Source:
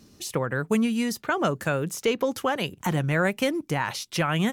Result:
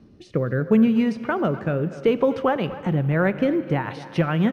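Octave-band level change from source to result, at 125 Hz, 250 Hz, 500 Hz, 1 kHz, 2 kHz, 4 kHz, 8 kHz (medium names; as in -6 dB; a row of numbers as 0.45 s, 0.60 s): +5.0 dB, +6.0 dB, +4.5 dB, +0.5 dB, -1.5 dB, -7.0 dB, under -15 dB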